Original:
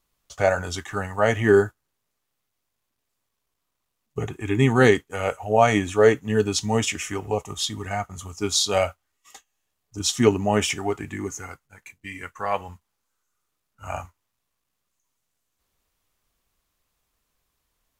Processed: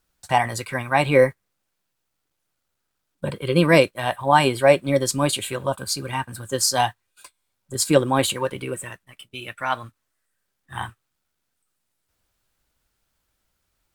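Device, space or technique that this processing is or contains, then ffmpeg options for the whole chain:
nightcore: -af "asetrate=56889,aresample=44100,volume=1.19"

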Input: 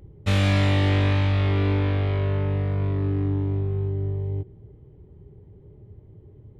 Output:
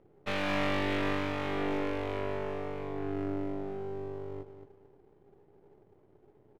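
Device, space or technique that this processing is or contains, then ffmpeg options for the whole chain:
crystal radio: -af "highpass=350,lowpass=2500,aecho=1:1:225|450|675:0.335|0.0904|0.0244,aeval=exprs='if(lt(val(0),0),0.251*val(0),val(0))':c=same"

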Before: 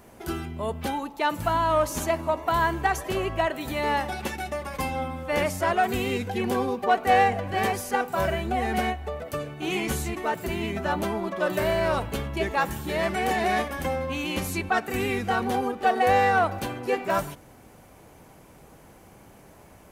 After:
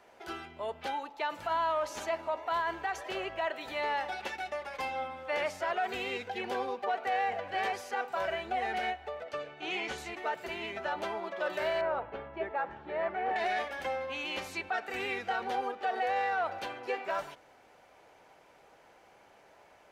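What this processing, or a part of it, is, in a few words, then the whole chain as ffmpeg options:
DJ mixer with the lows and highs turned down: -filter_complex "[0:a]asettb=1/sr,asplit=3[s0][s1][s2];[s0]atrim=end=9.244[s3];[s1]atrim=start=9.24:end=9.98,asetpts=PTS-STARTPTS,afade=t=in:d=0.004:c=qsin,afade=t=out:st=0.736:d=0.004:c=qsin,lowpass=7100[s4];[s2]atrim=start=9.976[s5];[s3][s4]acrossfade=d=0.004:c1=hsin:c2=qsin[s6];[s6][s5]acrossfade=d=0.004:c1=qsin:c2=hsin,asettb=1/sr,asplit=3[s7][s8][s9];[s7]atrim=end=11.814[s10];[s8]atrim=start=11.81:end=13.36,asetpts=PTS-STARTPTS,afade=t=in:d=0.004:c=qsin,afade=t=out:st=1.546:d=0.004:c=qsin,lowpass=1400[s11];[s9]atrim=start=13.356[s12];[s10][s11]acrossfade=d=0.004:c1=hsin:c2=qsin[s13];[s13][s12]acrossfade=d=0.004:c1=qsin:c2=hsin,acrossover=split=440 5600:gain=0.112 1 0.126[s14][s15][s16];[s14][s15][s16]amix=inputs=3:normalize=0,bandreject=f=1100:w=11,alimiter=limit=0.1:level=0:latency=1:release=42,volume=0.668"

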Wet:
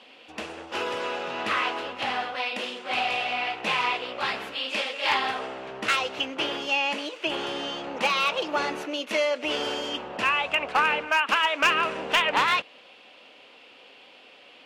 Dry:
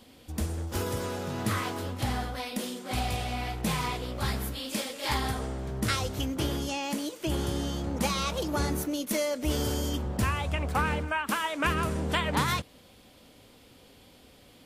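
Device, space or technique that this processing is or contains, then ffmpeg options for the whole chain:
megaphone: -af "highpass=540,lowpass=3300,equalizer=f=2700:t=o:w=0.34:g=10,asoftclip=type=hard:threshold=0.0891,volume=2.24"

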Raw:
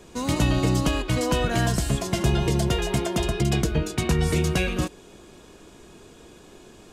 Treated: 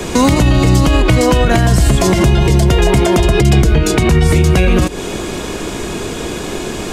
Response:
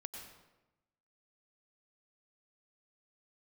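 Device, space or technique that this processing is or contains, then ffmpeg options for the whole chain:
mastering chain: -filter_complex "[0:a]equalizer=f=2100:t=o:w=0.27:g=4,acrossover=split=91|1200[s0][s1][s2];[s0]acompressor=threshold=0.0447:ratio=4[s3];[s1]acompressor=threshold=0.0316:ratio=4[s4];[s2]acompressor=threshold=0.00891:ratio=4[s5];[s3][s4][s5]amix=inputs=3:normalize=0,acompressor=threshold=0.0316:ratio=6,alimiter=level_in=22.4:limit=0.891:release=50:level=0:latency=1,volume=0.891"

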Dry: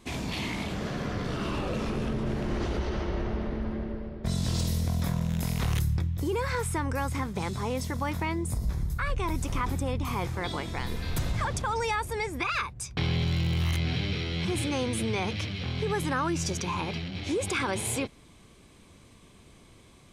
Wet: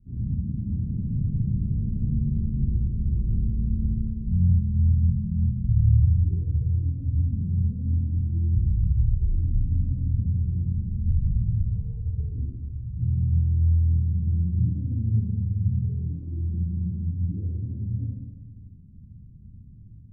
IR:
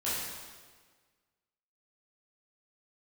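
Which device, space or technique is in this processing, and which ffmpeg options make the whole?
club heard from the street: -filter_complex "[0:a]alimiter=limit=0.0631:level=0:latency=1:release=141,lowpass=f=170:w=0.5412,lowpass=f=170:w=1.3066[s0];[1:a]atrim=start_sample=2205[s1];[s0][s1]afir=irnorm=-1:irlink=0,volume=1.78"

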